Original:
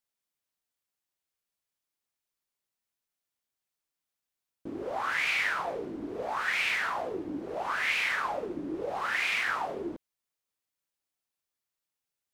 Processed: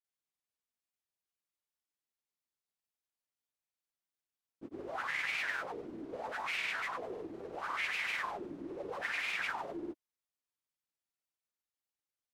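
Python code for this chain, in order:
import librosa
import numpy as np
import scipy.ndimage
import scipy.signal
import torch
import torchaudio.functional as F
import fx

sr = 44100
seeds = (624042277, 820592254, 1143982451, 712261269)

y = fx.granulator(x, sr, seeds[0], grain_ms=100.0, per_s=20.0, spray_ms=100.0, spread_st=0)
y = y * 10.0 ** (-6.0 / 20.0)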